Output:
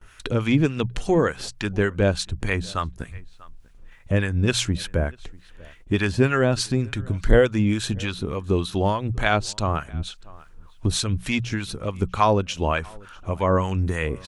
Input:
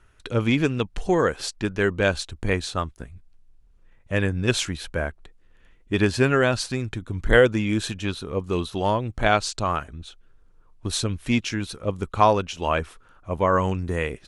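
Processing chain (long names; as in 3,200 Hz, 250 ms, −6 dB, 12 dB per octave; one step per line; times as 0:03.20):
mains-hum notches 60/120/180 Hz
noise gate with hold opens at −50 dBFS
bass and treble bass +5 dB, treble 0 dB
in parallel at +1 dB: downward compressor, threshold −28 dBFS, peak gain reduction 17 dB
on the sum: two-band tremolo in antiphase 3.4 Hz, depth 70%, crossover 840 Hz
slap from a distant wall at 110 metres, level −26 dB
one half of a high-frequency compander encoder only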